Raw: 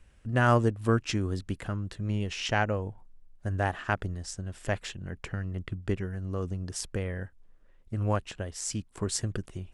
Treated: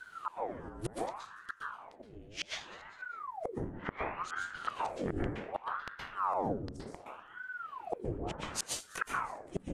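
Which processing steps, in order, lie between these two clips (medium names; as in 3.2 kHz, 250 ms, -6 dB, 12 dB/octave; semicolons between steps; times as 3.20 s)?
inverted gate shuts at -26 dBFS, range -36 dB; on a send: frequency-shifting echo 198 ms, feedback 45%, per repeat -72 Hz, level -22 dB; on the sum: level rider gain up to 3.5 dB; 3.48–4.70 s: low-pass 2.5 kHz 12 dB/octave; plate-style reverb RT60 0.72 s, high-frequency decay 0.4×, pre-delay 110 ms, DRR -3.5 dB; in parallel at 0 dB: compression, threshold -45 dBFS, peak gain reduction 15.5 dB; 8.18–8.79 s: on the sum: peaking EQ 450 Hz -> 1.3 kHz +14 dB 2.9 oct; ring modulator with a swept carrier 840 Hz, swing 80%, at 0.67 Hz; trim +1 dB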